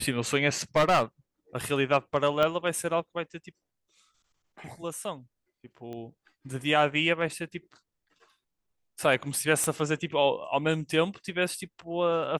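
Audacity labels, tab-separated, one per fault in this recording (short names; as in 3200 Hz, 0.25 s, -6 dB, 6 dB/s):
0.760000	1.030000	clipped -18 dBFS
2.430000	2.430000	pop -14 dBFS
5.930000	5.930000	pop -28 dBFS
9.640000	9.640000	pop -15 dBFS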